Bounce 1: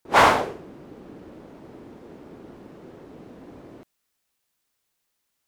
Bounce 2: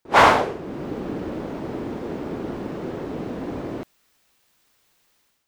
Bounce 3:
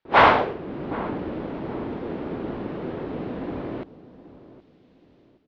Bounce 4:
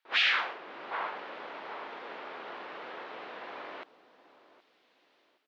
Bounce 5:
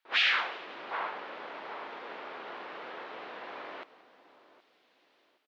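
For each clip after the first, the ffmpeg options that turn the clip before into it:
-af "equalizer=f=12000:w=0.57:g=-6,dynaudnorm=f=120:g=5:m=4.22,volume=1.19"
-filter_complex "[0:a]lowpass=f=3900:w=0.5412,lowpass=f=3900:w=1.3066,asplit=2[s0][s1];[s1]adelay=770,lowpass=f=1000:p=1,volume=0.168,asplit=2[s2][s3];[s3]adelay=770,lowpass=f=1000:p=1,volume=0.36,asplit=2[s4][s5];[s5]adelay=770,lowpass=f=1000:p=1,volume=0.36[s6];[s0][s2][s4][s6]amix=inputs=4:normalize=0,volume=0.891"
-af "afftfilt=real='re*lt(hypot(re,im),0.251)':imag='im*lt(hypot(re,im),0.251)':win_size=1024:overlap=0.75,highpass=1100,volume=1.26"
-filter_complex "[0:a]asplit=5[s0][s1][s2][s3][s4];[s1]adelay=176,afreqshift=85,volume=0.1[s5];[s2]adelay=352,afreqshift=170,volume=0.0562[s6];[s3]adelay=528,afreqshift=255,volume=0.0313[s7];[s4]adelay=704,afreqshift=340,volume=0.0176[s8];[s0][s5][s6][s7][s8]amix=inputs=5:normalize=0"

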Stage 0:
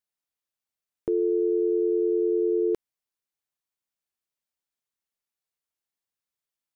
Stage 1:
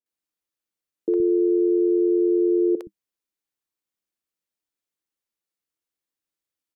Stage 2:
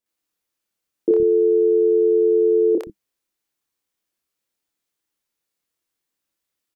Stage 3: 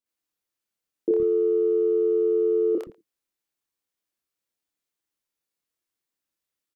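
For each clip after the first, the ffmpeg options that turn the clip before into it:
-filter_complex "[0:a]equalizer=f=200:t=o:w=0.33:g=7,equalizer=f=315:t=o:w=0.33:g=10,equalizer=f=500:t=o:w=0.33:g=7,acrossover=split=200|600[s0][s1][s2];[s2]adelay=60[s3];[s0]adelay=120[s4];[s4][s1][s3]amix=inputs=3:normalize=0"
-filter_complex "[0:a]asplit=2[s0][s1];[s1]adelay=27,volume=0.75[s2];[s0][s2]amix=inputs=2:normalize=0,volume=1.88"
-filter_complex "[0:a]asplit=2[s0][s1];[s1]adelay=110,highpass=300,lowpass=3400,asoftclip=type=hard:threshold=0.158,volume=0.126[s2];[s0][s2]amix=inputs=2:normalize=0,volume=0.531"

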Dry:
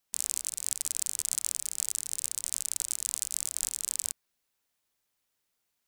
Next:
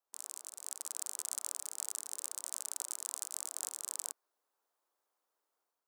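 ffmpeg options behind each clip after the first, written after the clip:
-af "highpass=f=340:w=0.5412,highpass=f=340:w=1.3066,highshelf=f=1600:t=q:w=1.5:g=-10.5,dynaudnorm=f=510:g=3:m=2,volume=0.668"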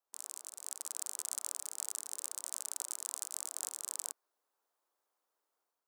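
-af anull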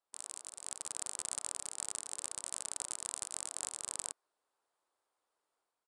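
-af "equalizer=f=6100:w=3.6:g=-6.5,aeval=exprs='0.158*(cos(1*acos(clip(val(0)/0.158,-1,1)))-cos(1*PI/2))+0.0112*(cos(4*acos(clip(val(0)/0.158,-1,1)))-cos(4*PI/2))':c=same,aresample=22050,aresample=44100,volume=1.19"

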